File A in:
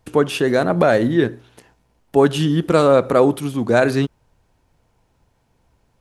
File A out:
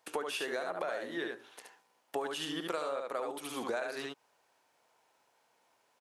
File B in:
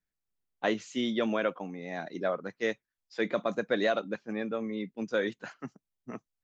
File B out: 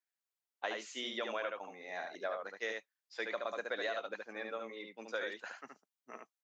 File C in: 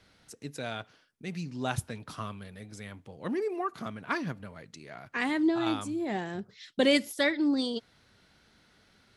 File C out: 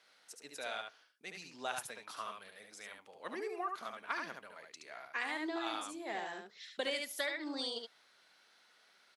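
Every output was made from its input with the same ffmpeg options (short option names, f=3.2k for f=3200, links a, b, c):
-af "highpass=630,aecho=1:1:72:0.596,acompressor=threshold=-30dB:ratio=10,volume=-3dB"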